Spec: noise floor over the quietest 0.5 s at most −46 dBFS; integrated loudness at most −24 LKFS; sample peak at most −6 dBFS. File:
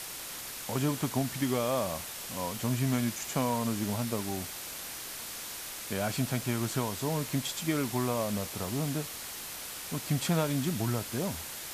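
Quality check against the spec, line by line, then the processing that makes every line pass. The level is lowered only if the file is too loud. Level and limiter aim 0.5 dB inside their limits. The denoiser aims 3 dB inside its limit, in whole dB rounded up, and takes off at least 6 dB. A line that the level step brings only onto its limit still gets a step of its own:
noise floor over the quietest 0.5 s −41 dBFS: out of spec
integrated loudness −32.5 LKFS: in spec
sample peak −16.5 dBFS: in spec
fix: broadband denoise 8 dB, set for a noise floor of −41 dBFS

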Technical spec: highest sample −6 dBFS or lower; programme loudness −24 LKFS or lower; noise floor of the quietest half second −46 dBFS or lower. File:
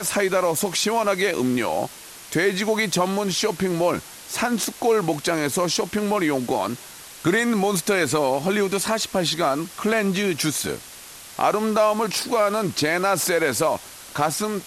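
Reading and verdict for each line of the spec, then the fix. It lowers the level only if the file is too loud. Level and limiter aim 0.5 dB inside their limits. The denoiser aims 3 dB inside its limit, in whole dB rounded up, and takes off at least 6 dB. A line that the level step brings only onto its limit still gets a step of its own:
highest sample −7.5 dBFS: in spec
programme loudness −22.0 LKFS: out of spec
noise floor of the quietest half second −41 dBFS: out of spec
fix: broadband denoise 6 dB, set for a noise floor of −41 dBFS
level −2.5 dB

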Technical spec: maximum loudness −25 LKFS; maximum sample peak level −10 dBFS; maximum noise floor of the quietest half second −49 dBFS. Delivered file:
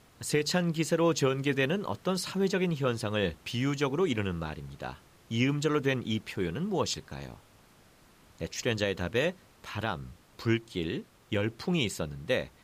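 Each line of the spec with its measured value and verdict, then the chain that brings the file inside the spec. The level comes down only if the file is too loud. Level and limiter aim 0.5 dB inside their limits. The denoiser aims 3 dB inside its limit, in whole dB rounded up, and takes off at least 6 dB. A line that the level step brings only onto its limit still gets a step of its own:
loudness −30.5 LKFS: in spec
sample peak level −15.5 dBFS: in spec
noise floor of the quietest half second −59 dBFS: in spec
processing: no processing needed

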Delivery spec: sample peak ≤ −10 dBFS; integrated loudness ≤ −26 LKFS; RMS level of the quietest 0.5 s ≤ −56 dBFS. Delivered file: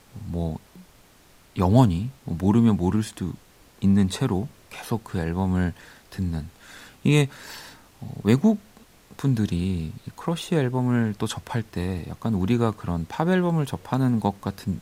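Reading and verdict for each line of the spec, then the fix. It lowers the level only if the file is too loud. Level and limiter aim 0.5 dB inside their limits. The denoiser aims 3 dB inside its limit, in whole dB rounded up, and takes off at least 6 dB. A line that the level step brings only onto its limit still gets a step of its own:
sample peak −3.5 dBFS: out of spec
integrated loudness −24.5 LKFS: out of spec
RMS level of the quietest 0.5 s −54 dBFS: out of spec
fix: broadband denoise 6 dB, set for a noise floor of −54 dBFS
level −2 dB
brickwall limiter −10.5 dBFS

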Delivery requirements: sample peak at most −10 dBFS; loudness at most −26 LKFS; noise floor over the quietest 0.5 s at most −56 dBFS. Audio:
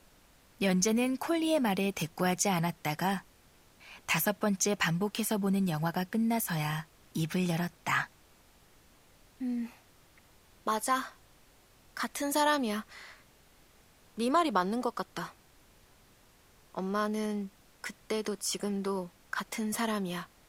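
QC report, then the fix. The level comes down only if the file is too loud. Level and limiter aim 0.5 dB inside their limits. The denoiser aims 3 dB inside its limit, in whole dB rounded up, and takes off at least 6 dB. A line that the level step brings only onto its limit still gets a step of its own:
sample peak −12.5 dBFS: in spec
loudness −31.5 LKFS: in spec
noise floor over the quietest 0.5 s −62 dBFS: in spec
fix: no processing needed

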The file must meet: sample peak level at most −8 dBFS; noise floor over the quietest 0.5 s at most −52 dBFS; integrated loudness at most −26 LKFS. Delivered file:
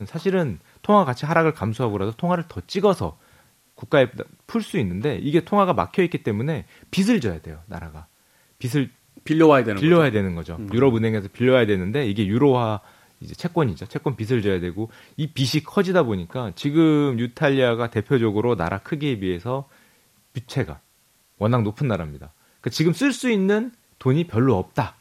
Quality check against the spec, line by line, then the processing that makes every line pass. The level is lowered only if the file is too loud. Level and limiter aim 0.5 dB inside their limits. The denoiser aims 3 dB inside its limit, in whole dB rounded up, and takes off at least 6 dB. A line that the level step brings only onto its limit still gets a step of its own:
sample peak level −2.5 dBFS: out of spec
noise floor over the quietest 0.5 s −61 dBFS: in spec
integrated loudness −22.0 LKFS: out of spec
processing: level −4.5 dB
brickwall limiter −8.5 dBFS

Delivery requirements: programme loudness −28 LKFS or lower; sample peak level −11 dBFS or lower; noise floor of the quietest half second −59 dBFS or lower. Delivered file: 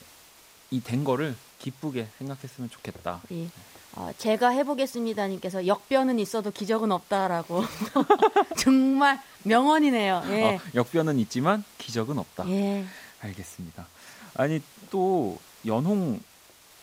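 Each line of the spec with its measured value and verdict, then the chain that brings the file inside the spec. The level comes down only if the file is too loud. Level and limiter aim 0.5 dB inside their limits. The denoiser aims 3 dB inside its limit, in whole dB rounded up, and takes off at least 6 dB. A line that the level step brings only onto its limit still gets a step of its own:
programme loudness −26.0 LKFS: out of spec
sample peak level −5.5 dBFS: out of spec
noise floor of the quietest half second −54 dBFS: out of spec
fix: broadband denoise 6 dB, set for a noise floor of −54 dBFS
level −2.5 dB
brickwall limiter −11.5 dBFS

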